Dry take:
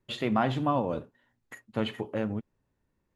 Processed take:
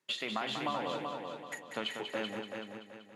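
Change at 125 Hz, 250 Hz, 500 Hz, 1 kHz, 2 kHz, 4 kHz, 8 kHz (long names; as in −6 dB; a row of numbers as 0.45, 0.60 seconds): −17.0 dB, −11.0 dB, −6.5 dB, −5.5 dB, +0.5 dB, +3.0 dB, can't be measured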